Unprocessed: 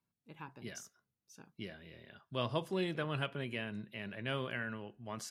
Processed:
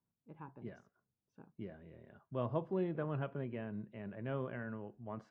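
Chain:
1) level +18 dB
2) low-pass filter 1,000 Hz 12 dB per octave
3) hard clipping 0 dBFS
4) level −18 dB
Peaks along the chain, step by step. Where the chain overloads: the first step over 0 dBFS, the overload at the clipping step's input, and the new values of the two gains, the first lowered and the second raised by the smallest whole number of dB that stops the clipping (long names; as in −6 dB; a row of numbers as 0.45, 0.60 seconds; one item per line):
−1.0, −3.5, −3.5, −21.5 dBFS
no step passes full scale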